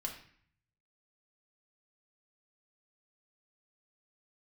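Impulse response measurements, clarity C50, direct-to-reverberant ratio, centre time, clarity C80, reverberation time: 8.0 dB, 0.0 dB, 20 ms, 11.0 dB, 0.55 s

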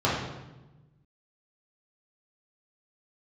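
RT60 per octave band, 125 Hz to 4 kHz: 1.7, 1.5, 1.1, 1.0, 0.90, 0.80 s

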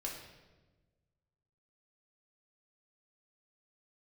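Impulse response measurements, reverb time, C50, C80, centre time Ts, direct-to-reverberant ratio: 1.2 s, 4.0 dB, 6.5 dB, 44 ms, -2.0 dB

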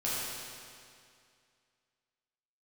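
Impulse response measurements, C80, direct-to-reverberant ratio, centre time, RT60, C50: -1.5 dB, -9.0 dB, 0.155 s, 2.3 s, -3.5 dB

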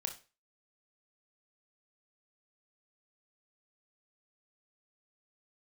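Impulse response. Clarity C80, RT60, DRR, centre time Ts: 17.5 dB, 0.35 s, 4.0 dB, 12 ms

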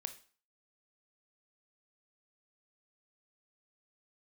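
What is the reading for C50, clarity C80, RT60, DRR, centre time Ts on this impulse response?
13.0 dB, 18.0 dB, 0.40 s, 9.0 dB, 7 ms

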